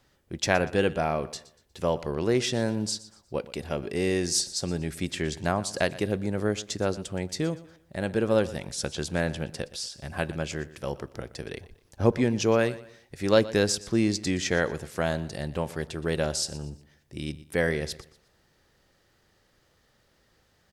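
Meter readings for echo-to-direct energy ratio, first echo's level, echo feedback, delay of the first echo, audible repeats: −17.5 dB, −18.0 dB, 34%, 120 ms, 2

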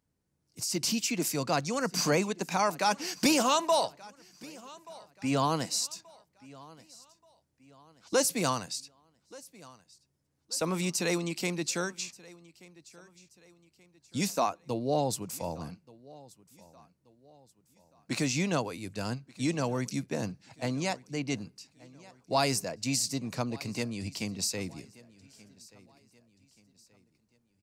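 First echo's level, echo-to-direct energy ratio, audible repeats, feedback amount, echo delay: −22.0 dB, −21.5 dB, 2, 40%, 1,180 ms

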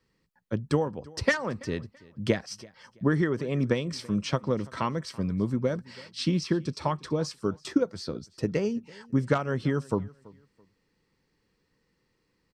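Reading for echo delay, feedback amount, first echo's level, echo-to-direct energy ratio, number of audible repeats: 332 ms, 27%, −23.0 dB, −22.5 dB, 2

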